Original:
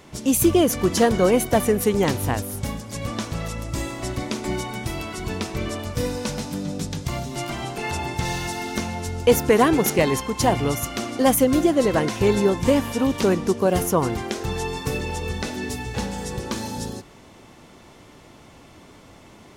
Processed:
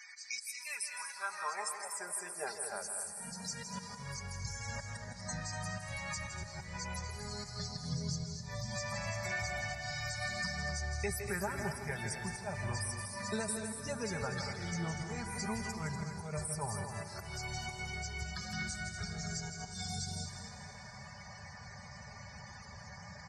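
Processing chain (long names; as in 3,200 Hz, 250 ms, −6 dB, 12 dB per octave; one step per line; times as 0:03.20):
parametric band 3,500 Hz −11.5 dB 0.66 octaves
speed change −16%
guitar amp tone stack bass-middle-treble 10-0-10
downward compressor 12 to 1, threshold −45 dBFS, peak gain reduction 25.5 dB
volume swells 149 ms
spectral peaks only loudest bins 64
high-pass filter sweep 2,300 Hz → 100 Hz, 0:00.35–0:04.32
comb filter 5 ms, depth 49%
loudspeakers that aren't time-aligned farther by 56 metres −9 dB, 83 metres −9 dB
on a send at −10.5 dB: convolution reverb RT60 3.4 s, pre-delay 144 ms
on the sum: level +9.5 dB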